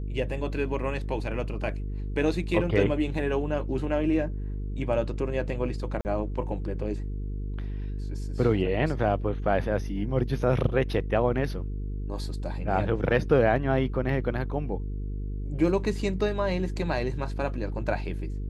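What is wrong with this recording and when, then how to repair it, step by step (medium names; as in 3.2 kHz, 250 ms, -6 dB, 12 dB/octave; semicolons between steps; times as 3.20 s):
buzz 50 Hz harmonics 9 -32 dBFS
6.01–6.05 s: dropout 39 ms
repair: de-hum 50 Hz, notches 9; interpolate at 6.01 s, 39 ms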